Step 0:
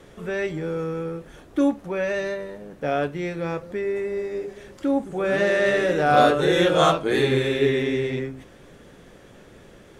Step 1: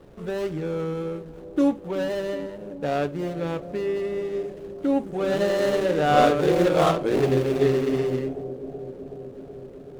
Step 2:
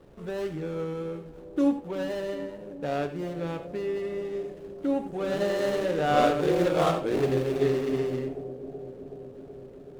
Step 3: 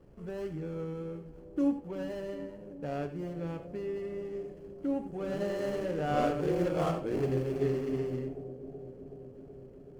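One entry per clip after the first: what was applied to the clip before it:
median filter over 25 samples; bucket-brigade echo 375 ms, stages 2048, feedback 75%, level -15 dB
gated-style reverb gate 110 ms rising, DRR 10 dB; trim -4.5 dB
bass shelf 300 Hz +8.5 dB; band-stop 3.7 kHz, Q 6.1; trim -9 dB

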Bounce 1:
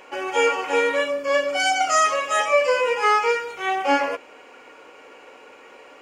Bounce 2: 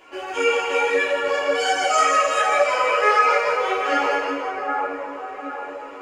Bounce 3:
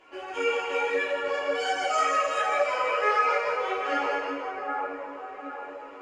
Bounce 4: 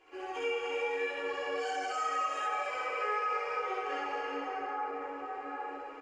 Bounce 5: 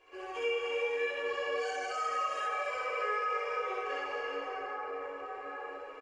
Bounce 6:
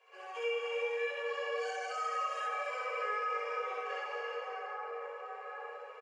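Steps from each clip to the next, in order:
two-band feedback delay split 1.7 kHz, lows 767 ms, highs 163 ms, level -5 dB; simulated room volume 3400 m³, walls mixed, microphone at 3.1 m; three-phase chorus; trim -1.5 dB
treble shelf 8.3 kHz -11.5 dB; trim -6.5 dB
comb 2.5 ms, depth 57%; compression 3:1, threshold -30 dBFS, peak gain reduction 10.5 dB; on a send: loudspeakers at several distances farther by 22 m 0 dB, 98 m -5 dB; on the sum: trim -7.5 dB
comb 1.8 ms, depth 55%; trim -1.5 dB
elliptic high-pass 450 Hz, stop band 40 dB; trim -2 dB

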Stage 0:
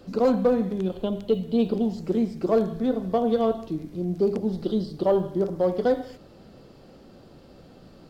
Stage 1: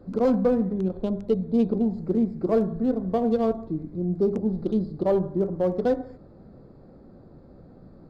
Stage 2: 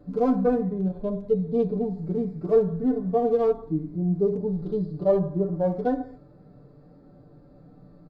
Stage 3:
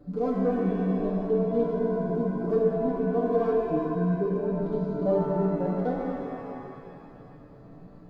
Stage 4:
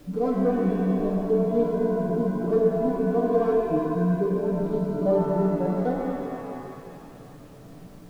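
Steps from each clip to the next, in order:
local Wiener filter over 15 samples; bass shelf 320 Hz +6.5 dB; trim -3 dB
harmonic-percussive split percussive -18 dB; comb 6.8 ms, depth 81%
in parallel at +2 dB: compression, threshold -32 dBFS, peak gain reduction 16.5 dB; on the sum: pitch-shifted reverb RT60 2.5 s, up +7 st, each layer -8 dB, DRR -0.5 dB; trim -8.5 dB
added noise pink -60 dBFS; trim +2.5 dB

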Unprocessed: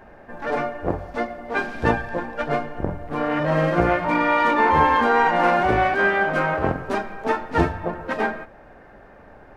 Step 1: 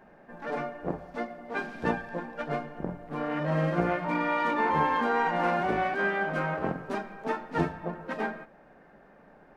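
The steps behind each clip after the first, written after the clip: resonant low shelf 130 Hz -6.5 dB, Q 3; trim -9 dB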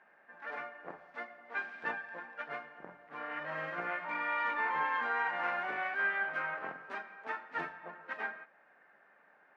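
band-pass filter 1.8 kHz, Q 1.4; trim -1 dB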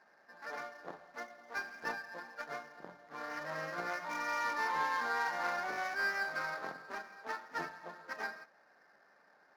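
median filter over 15 samples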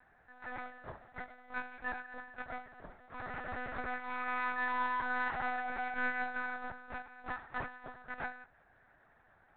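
monotone LPC vocoder at 8 kHz 250 Hz

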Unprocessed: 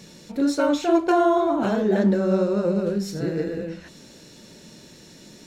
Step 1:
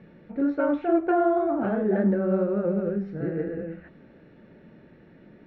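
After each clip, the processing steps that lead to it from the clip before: low-pass 2 kHz 24 dB/octave; band-stop 1 kHz, Q 5.5; trim -3 dB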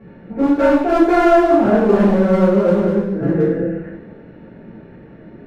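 treble shelf 2.4 kHz -12 dB; hard clipper -21.5 dBFS, distortion -12 dB; two-slope reverb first 0.72 s, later 1.9 s, DRR -10 dB; trim +3 dB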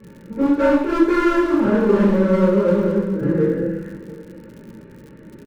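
crackle 96 per s -35 dBFS; Butterworth band-stop 710 Hz, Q 3.2; delay 695 ms -19.5 dB; trim -2 dB

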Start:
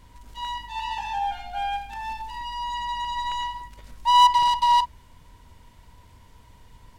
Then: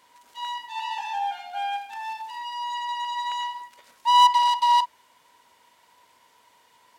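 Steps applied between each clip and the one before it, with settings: high-pass 540 Hz 12 dB/octave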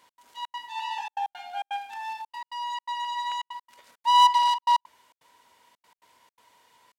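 trance gate "x.xxx.xxxxxx." 167 bpm -60 dB; trim -1.5 dB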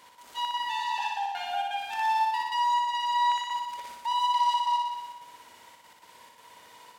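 compression, threshold -29 dBFS, peak gain reduction 13.5 dB; peak limiter -30.5 dBFS, peak gain reduction 8.5 dB; on a send: flutter echo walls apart 10.3 m, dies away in 1.2 s; on the sum: trim +6 dB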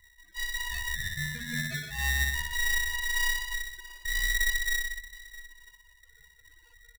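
loudest bins only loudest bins 8; delay 656 ms -16.5 dB; polarity switched at an audio rate 950 Hz; trim -2 dB

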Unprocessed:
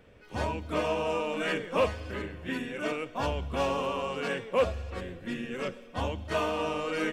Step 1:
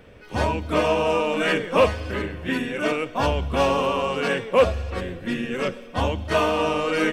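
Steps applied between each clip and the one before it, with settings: band-stop 7.1 kHz, Q 15; trim +8.5 dB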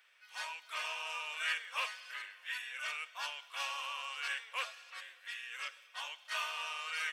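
Bessel high-pass 1.8 kHz, order 4; trim -7.5 dB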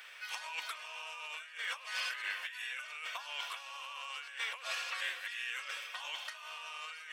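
compressor with a negative ratio -51 dBFS, ratio -1; trim +7.5 dB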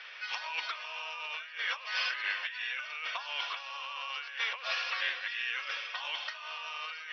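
steep low-pass 5.7 kHz 96 dB/octave; trim +5 dB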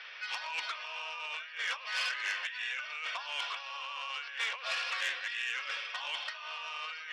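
transformer saturation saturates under 3.6 kHz

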